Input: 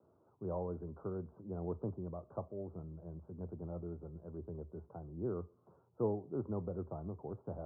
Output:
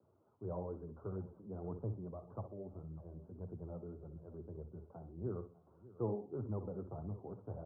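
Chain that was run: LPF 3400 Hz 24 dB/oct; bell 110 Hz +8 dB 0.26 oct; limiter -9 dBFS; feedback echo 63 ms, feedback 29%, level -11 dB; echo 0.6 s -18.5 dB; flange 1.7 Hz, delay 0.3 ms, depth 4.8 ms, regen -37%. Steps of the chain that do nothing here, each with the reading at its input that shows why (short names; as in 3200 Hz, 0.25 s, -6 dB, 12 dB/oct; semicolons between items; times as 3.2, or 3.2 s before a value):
LPF 3400 Hz: input band ends at 1100 Hz; limiter -9 dBFS: input peak -22.0 dBFS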